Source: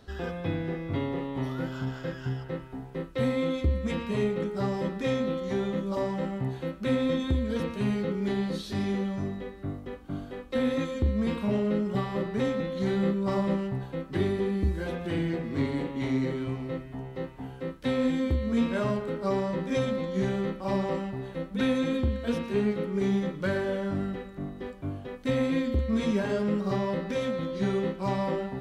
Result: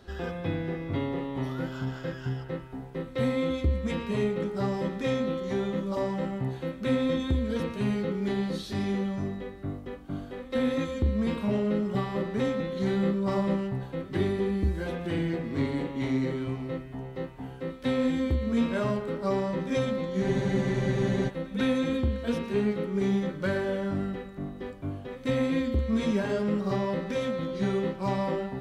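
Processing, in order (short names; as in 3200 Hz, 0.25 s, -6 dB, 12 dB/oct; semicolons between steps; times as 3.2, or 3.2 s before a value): pre-echo 0.148 s -21.5 dB; spectral freeze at 20.25, 1.03 s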